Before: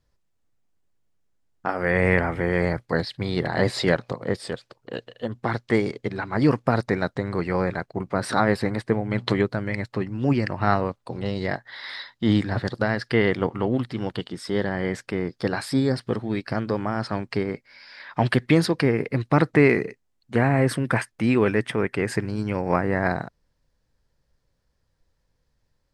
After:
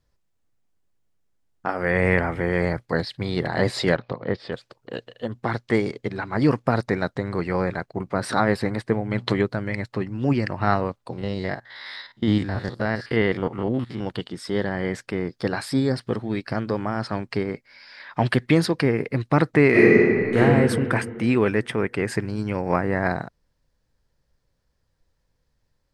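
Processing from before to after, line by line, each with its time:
0:03.96–0:04.53: low-pass filter 4,300 Hz 24 dB per octave
0:11.13–0:14.07: spectrum averaged block by block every 50 ms
0:19.70–0:20.37: thrown reverb, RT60 2.3 s, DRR −11 dB

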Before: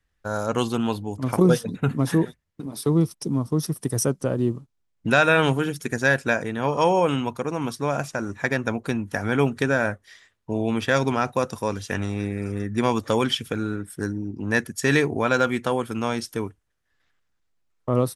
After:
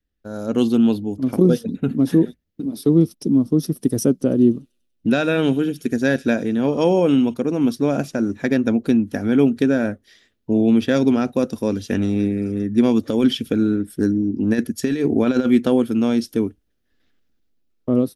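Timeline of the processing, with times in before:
0:04.18–0:07.34: delay with a high-pass on its return 97 ms, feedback 53%, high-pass 4,500 Hz, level −11 dB
0:13.08–0:15.90: compressor whose output falls as the input rises −22 dBFS, ratio −0.5
whole clip: octave-band graphic EQ 125/250/1,000/2,000/8,000 Hz −7/+9/−12/−6/−10 dB; automatic gain control; level −3.5 dB

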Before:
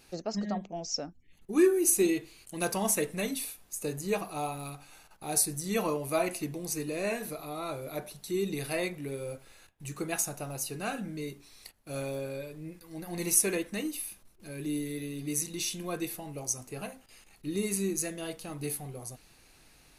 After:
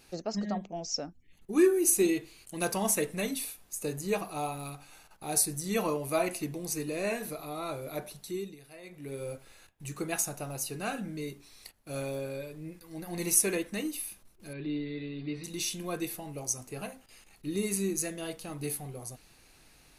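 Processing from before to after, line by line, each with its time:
0:08.17–0:09.23: duck −18 dB, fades 0.40 s
0:14.53–0:15.44: elliptic low-pass filter 4,300 Hz

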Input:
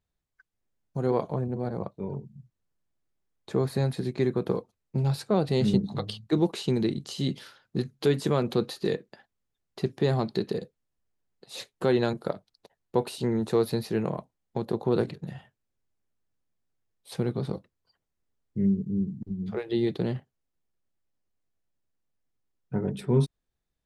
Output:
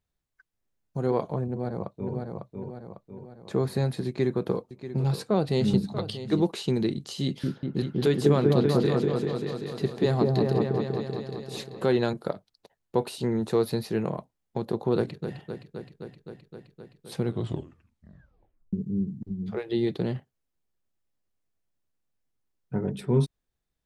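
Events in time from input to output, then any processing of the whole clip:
0:01.46–0:02.15: delay throw 550 ms, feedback 50%, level −4 dB
0:04.07–0:06.44: single-tap delay 636 ms −12.5 dB
0:07.24–0:11.96: echo whose low-pass opens from repeat to repeat 194 ms, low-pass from 750 Hz, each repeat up 1 octave, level 0 dB
0:14.96–0:15.36: delay throw 260 ms, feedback 80%, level −8.5 dB
0:17.25: tape stop 1.48 s

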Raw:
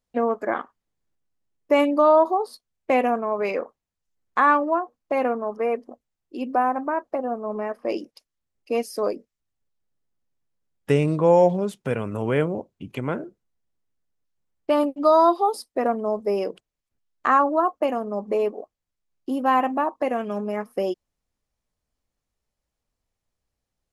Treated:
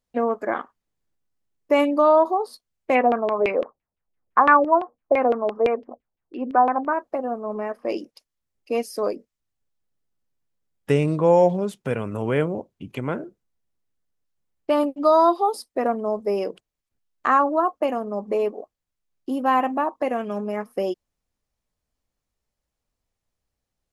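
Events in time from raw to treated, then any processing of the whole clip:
0:02.95–0:06.93: auto-filter low-pass saw down 5.9 Hz 430–2,900 Hz

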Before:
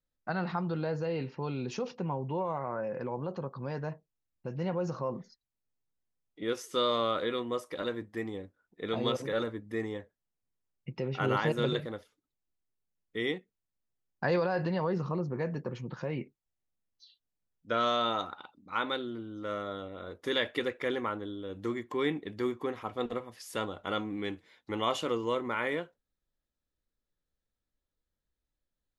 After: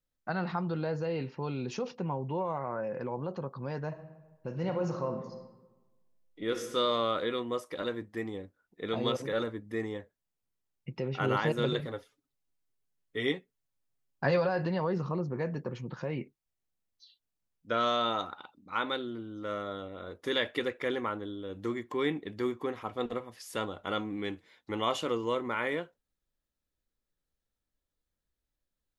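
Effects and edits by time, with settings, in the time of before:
0:03.87–0:06.74: thrown reverb, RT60 1.2 s, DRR 5.5 dB
0:11.79–0:14.49: comb filter 7.3 ms

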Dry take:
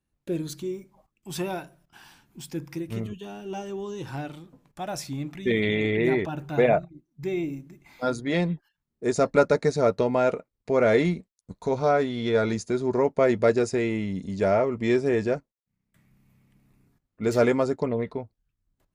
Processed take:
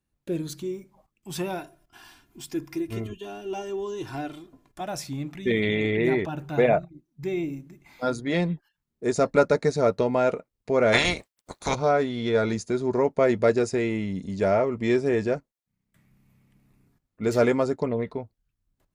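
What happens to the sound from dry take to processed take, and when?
0:01.59–0:04.81: comb filter 2.9 ms
0:10.92–0:11.74: ceiling on every frequency bin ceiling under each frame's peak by 29 dB

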